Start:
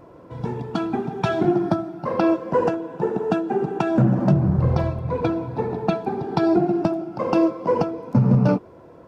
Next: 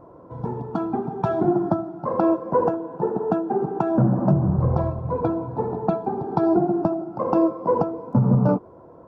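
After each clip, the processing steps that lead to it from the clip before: resonant high shelf 1600 Hz -13 dB, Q 1.5; gain -1.5 dB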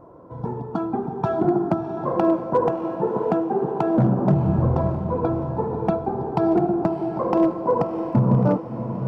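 overloaded stage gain 10.5 dB; on a send: diffused feedback echo 0.656 s, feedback 48%, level -8.5 dB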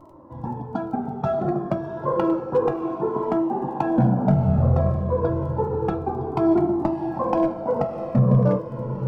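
crackle 11/s -44 dBFS; reverb RT60 0.30 s, pre-delay 4 ms, DRR 7.5 dB; cascading flanger falling 0.3 Hz; gain +3 dB

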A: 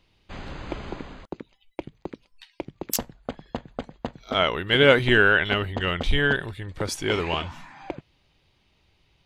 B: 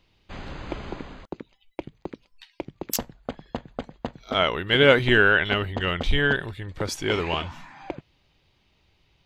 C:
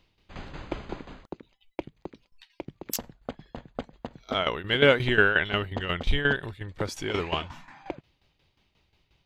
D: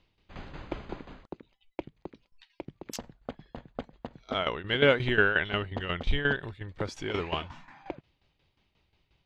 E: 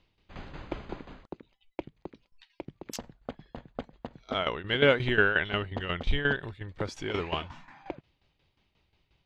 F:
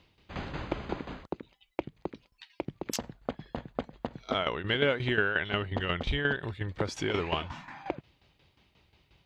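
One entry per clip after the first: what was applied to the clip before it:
bell 9500 Hz -6 dB 0.34 oct
tremolo saw down 5.6 Hz, depth 75%
air absorption 69 m; gain -2.5 dB
nothing audible
HPF 46 Hz 12 dB/oct; compressor 2.5:1, threshold -36 dBFS, peak gain reduction 13 dB; gain +7 dB

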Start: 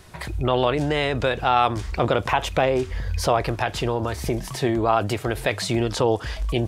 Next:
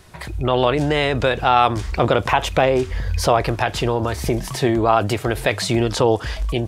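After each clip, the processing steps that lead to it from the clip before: AGC gain up to 5 dB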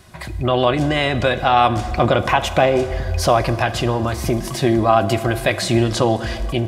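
notch comb 450 Hz; on a send at -12 dB: reverb RT60 2.6 s, pre-delay 5 ms; on the sum: gain +2 dB

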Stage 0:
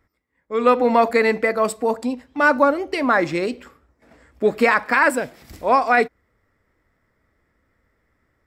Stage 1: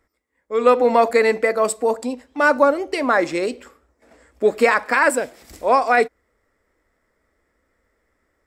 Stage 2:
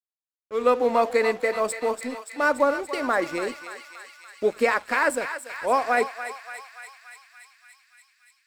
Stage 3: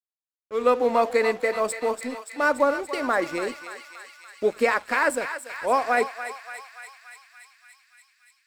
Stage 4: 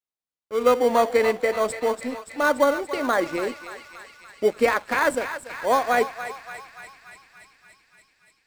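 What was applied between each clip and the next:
graphic EQ 125/500/8000 Hz -11/+4/+7 dB; gain -1 dB
crossover distortion -37 dBFS; on a send: thinning echo 0.287 s, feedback 79%, high-pass 1100 Hz, level -8 dB; on the sum: gain -5.5 dB
nothing audible
high shelf 8800 Hz -7.5 dB; in parallel at -10 dB: sample-and-hold 17×

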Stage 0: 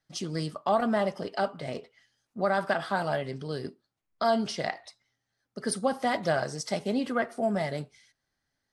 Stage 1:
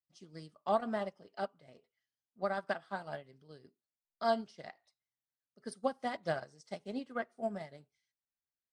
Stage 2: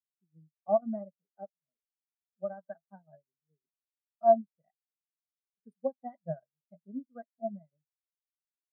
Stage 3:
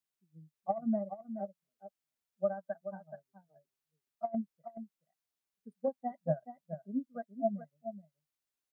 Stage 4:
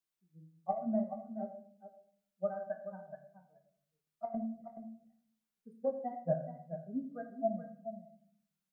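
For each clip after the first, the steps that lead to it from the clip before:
LPF 10000 Hz 24 dB/oct; upward expander 2.5:1, over -35 dBFS; gain -4 dB
resonant low shelf 120 Hz -9 dB, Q 3; spectral expander 2.5:1; gain +6 dB
negative-ratio compressor -29 dBFS, ratio -0.5; on a send: echo 0.426 s -10.5 dB
shoebox room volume 80 m³, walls mixed, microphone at 0.52 m; gain -2.5 dB

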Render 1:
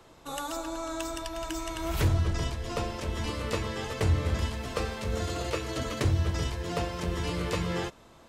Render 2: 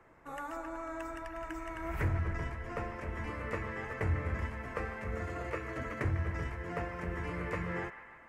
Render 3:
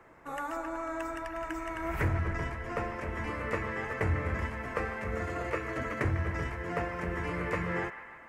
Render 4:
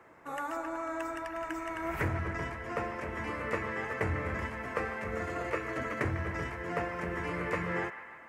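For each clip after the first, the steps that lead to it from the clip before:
resonant high shelf 2700 Hz -11 dB, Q 3; band-limited delay 0.15 s, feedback 63%, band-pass 1500 Hz, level -10.5 dB; gain -7 dB
low shelf 120 Hz -5 dB; gain +5 dB
HPF 120 Hz 6 dB/oct

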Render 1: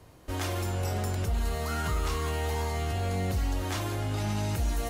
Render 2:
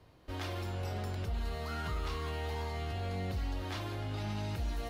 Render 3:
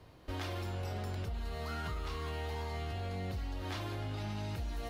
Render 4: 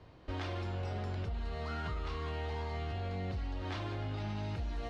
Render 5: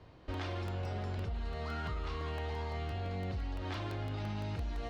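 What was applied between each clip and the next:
resonant high shelf 5600 Hz -7.5 dB, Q 1.5; gain -7 dB
compressor, threshold -39 dBFS, peak gain reduction 7.5 dB; gain +3.5 dB
air absorption 110 m; gain +1 dB
crackling interface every 0.17 s, samples 64, repeat, from 0.34

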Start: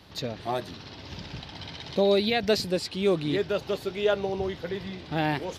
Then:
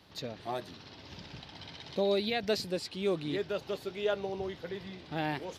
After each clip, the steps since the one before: low shelf 92 Hz -6.5 dB; gain -6.5 dB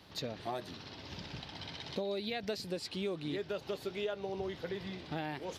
compressor 6:1, threshold -36 dBFS, peak gain reduction 11 dB; gain +2 dB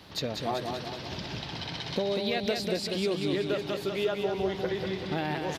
feedback echo 0.193 s, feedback 54%, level -5 dB; gain +7 dB

